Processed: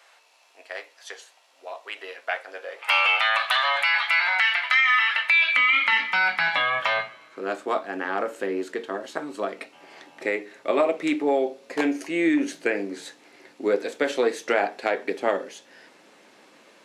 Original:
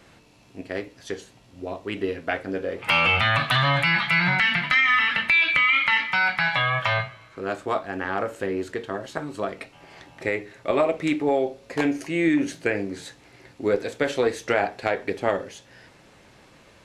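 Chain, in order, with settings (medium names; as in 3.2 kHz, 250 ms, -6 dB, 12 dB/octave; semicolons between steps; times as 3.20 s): high-pass 640 Hz 24 dB/octave, from 5.57 s 230 Hz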